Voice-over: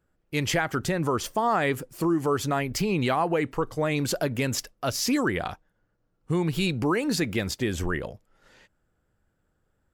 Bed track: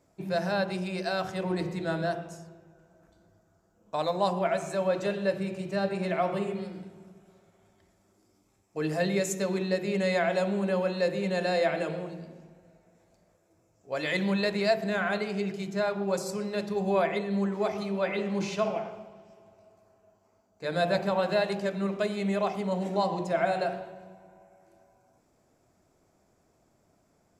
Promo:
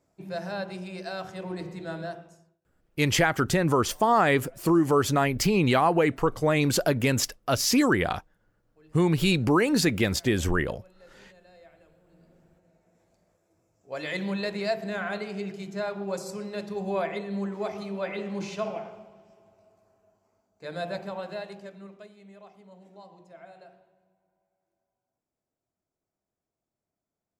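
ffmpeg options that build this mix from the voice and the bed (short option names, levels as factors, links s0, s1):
-filter_complex "[0:a]adelay=2650,volume=1.41[s0];[1:a]volume=10,afade=t=out:st=2.01:d=0.58:silence=0.0707946,afade=t=in:st=12.05:d=0.95:silence=0.0562341,afade=t=out:st=20.04:d=2.11:silence=0.112202[s1];[s0][s1]amix=inputs=2:normalize=0"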